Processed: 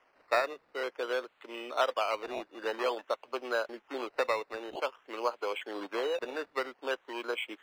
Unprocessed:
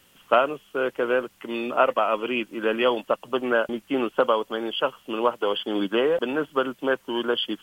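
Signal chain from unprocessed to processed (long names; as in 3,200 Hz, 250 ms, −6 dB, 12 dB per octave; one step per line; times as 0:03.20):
parametric band 160 Hz −10 dB 1 octave
sample-and-hold swept by an LFO 11×, swing 60% 0.51 Hz
three-way crossover with the lows and the highs turned down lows −17 dB, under 340 Hz, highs −20 dB, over 4,200 Hz
level −7.5 dB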